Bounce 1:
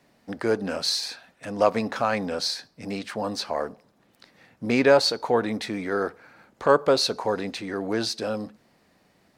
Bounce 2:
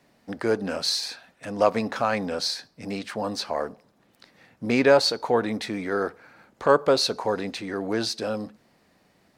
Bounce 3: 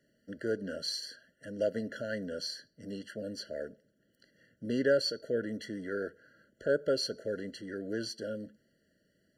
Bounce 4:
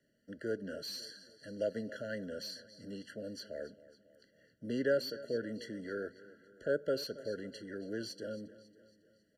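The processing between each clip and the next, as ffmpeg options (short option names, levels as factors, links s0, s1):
-af anull
-af "afftfilt=real='re*eq(mod(floor(b*sr/1024/680),2),0)':imag='im*eq(mod(floor(b*sr/1024/680),2),0)':win_size=1024:overlap=0.75,volume=0.355"
-filter_complex "[0:a]aecho=1:1:275|550|825|1100:0.126|0.0655|0.034|0.0177,acrossover=split=280|970|2600[s0][s1][s2][s3];[s3]asoftclip=type=hard:threshold=0.0141[s4];[s0][s1][s2][s4]amix=inputs=4:normalize=0,aresample=32000,aresample=44100,volume=0.631"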